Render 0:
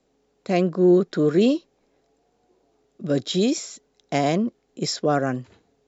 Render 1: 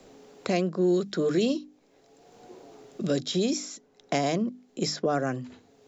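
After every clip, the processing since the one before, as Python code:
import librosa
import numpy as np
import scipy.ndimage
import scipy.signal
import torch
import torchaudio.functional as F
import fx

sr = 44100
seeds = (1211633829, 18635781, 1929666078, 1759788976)

y = fx.hum_notches(x, sr, base_hz=50, count=6)
y = fx.dynamic_eq(y, sr, hz=5800.0, q=1.5, threshold_db=-46.0, ratio=4.0, max_db=6)
y = fx.band_squash(y, sr, depth_pct=70)
y = y * librosa.db_to_amplitude(-5.0)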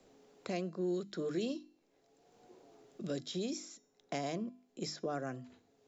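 y = fx.comb_fb(x, sr, f0_hz=340.0, decay_s=0.61, harmonics='all', damping=0.0, mix_pct=50)
y = y * librosa.db_to_amplitude(-6.0)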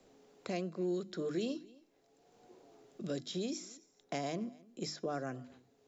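y = x + 10.0 ** (-23.5 / 20.0) * np.pad(x, (int(262 * sr / 1000.0), 0))[:len(x)]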